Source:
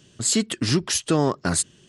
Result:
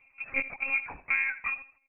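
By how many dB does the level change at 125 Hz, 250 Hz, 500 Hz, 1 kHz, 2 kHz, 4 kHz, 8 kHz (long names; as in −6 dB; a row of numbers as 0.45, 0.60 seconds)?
below −30 dB, −27.5 dB, −22.5 dB, −11.5 dB, +6.5 dB, below −30 dB, below −40 dB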